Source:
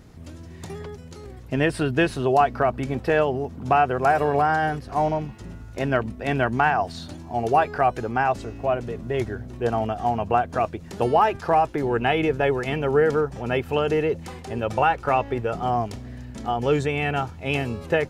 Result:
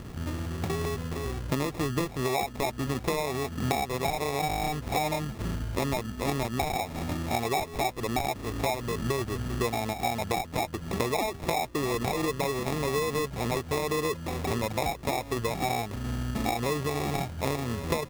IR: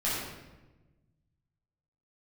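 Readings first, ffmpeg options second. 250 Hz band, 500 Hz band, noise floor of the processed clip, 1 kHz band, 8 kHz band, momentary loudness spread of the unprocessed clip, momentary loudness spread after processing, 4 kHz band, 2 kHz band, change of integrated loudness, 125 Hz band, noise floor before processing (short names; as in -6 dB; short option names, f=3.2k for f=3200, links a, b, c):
-4.0 dB, -8.0 dB, -42 dBFS, -8.5 dB, n/a, 14 LU, 4 LU, +1.0 dB, -7.5 dB, -7.0 dB, -3.0 dB, -41 dBFS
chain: -af "acrusher=samples=29:mix=1:aa=0.000001,acompressor=threshold=-33dB:ratio=12,volume=7.5dB"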